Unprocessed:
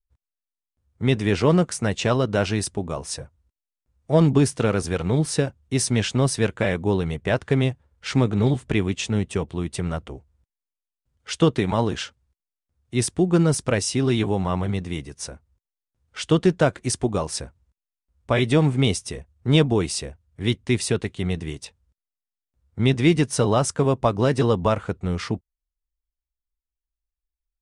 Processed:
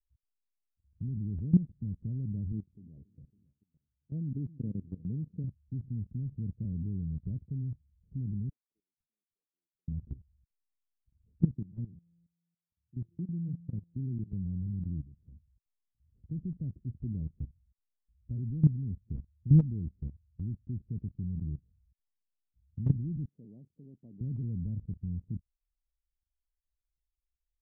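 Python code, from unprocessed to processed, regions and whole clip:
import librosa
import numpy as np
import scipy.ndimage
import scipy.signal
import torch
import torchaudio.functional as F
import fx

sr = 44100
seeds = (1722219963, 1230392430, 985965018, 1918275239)

y = fx.chain(x, sr, fx.highpass(hz=380.0, slope=6),
    fx.echo_feedback(ms=278, feedback_pct=46, wet_db=-20), at=(2.52, 5.44))
y = fx.chain(y, sr, fx.highpass(hz=1300.0, slope=24),
    fx.quant_float(bits=6), at=(8.49, 9.88))
y = fx.chain(y, sr, fx.highpass(hz=86.0, slope=24),
    fx.comb_fb(f0_hz=170.0, decay_s=1.0, harmonics='all', damping=0.0, mix_pct=70), at=(11.55, 14.33))
y = fx.chain(y, sr, fx.highpass(hz=250.0, slope=12),
    fx.tilt_eq(slope=3.0), at=(23.25, 24.21))
y = scipy.signal.sosfilt(scipy.signal.cheby2(4, 80, 1300.0, 'lowpass', fs=sr, output='sos'), y)
y = fx.low_shelf(y, sr, hz=87.0, db=6.0)
y = fx.level_steps(y, sr, step_db=17)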